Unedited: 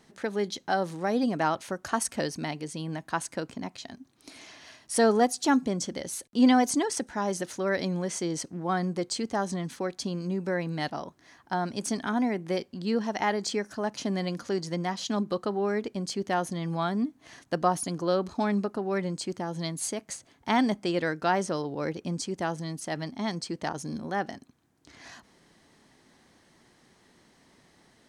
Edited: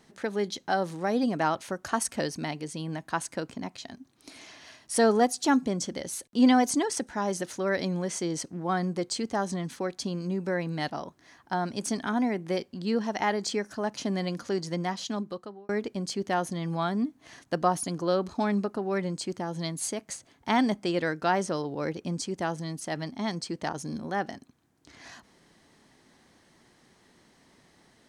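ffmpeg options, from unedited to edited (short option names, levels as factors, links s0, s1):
-filter_complex "[0:a]asplit=2[s0][s1];[s0]atrim=end=15.69,asetpts=PTS-STARTPTS,afade=t=out:st=14.89:d=0.8[s2];[s1]atrim=start=15.69,asetpts=PTS-STARTPTS,afade=t=in:d=0.004:c=hsin[s3];[s2][s3]concat=n=2:v=0:a=1"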